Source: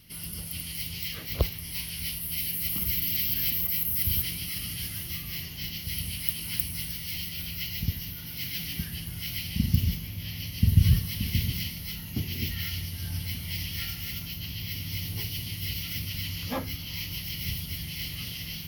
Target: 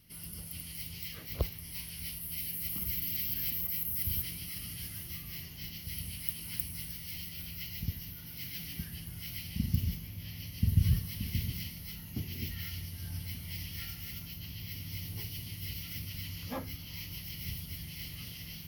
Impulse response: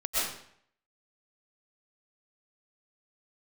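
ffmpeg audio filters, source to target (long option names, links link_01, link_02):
-af "equalizer=frequency=3400:width=1:gain=-4,volume=-6.5dB"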